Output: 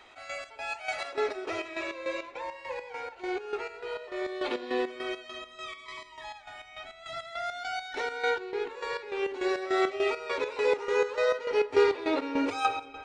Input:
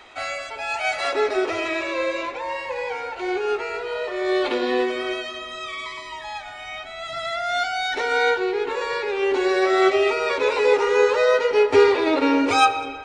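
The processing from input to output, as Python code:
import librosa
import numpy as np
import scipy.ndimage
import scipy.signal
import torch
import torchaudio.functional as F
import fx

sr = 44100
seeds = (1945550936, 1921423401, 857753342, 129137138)

y = fx.chopper(x, sr, hz=3.4, depth_pct=65, duty_pct=50)
y = F.gain(torch.from_numpy(y), -7.5).numpy()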